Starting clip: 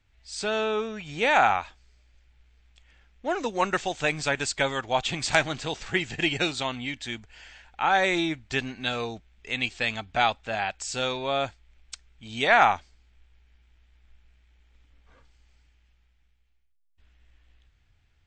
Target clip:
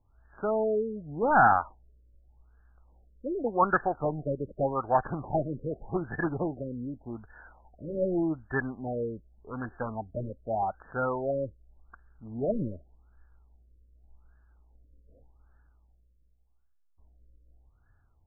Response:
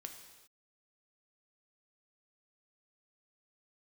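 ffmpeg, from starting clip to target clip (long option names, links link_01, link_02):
-af "crystalizer=i=7:c=0,asoftclip=type=hard:threshold=-13.5dB,afftfilt=real='re*lt(b*sr/1024,570*pow(1800/570,0.5+0.5*sin(2*PI*0.85*pts/sr)))':imag='im*lt(b*sr/1024,570*pow(1800/570,0.5+0.5*sin(2*PI*0.85*pts/sr)))':win_size=1024:overlap=0.75"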